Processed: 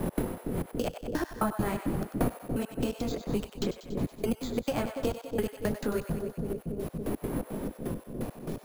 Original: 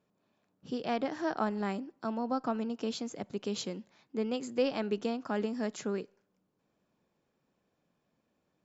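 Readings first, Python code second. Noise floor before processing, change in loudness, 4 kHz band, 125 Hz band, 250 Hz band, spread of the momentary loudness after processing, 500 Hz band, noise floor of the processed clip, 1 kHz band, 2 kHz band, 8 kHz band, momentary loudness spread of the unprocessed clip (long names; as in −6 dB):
−79 dBFS, +1.5 dB, −0.5 dB, +12.5 dB, +3.5 dB, 5 LU, +2.5 dB, −52 dBFS, 0.0 dB, +2.0 dB, can't be measured, 7 LU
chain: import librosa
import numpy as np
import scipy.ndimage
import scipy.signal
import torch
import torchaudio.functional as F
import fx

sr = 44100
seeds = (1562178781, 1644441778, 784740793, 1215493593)

y = fx.dmg_wind(x, sr, seeds[0], corner_hz=300.0, level_db=-39.0)
y = fx.chorus_voices(y, sr, voices=4, hz=0.96, base_ms=21, depth_ms=4.0, mix_pct=50)
y = np.repeat(y[::4], 4)[:len(y)]
y = fx.step_gate(y, sr, bpm=170, pattern='x.xx.xx..x...x..', floor_db=-60.0, edge_ms=4.5)
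y = fx.echo_split(y, sr, split_hz=540.0, low_ms=282, high_ms=94, feedback_pct=52, wet_db=-10.0)
y = fx.band_squash(y, sr, depth_pct=100)
y = y * 10.0 ** (8.5 / 20.0)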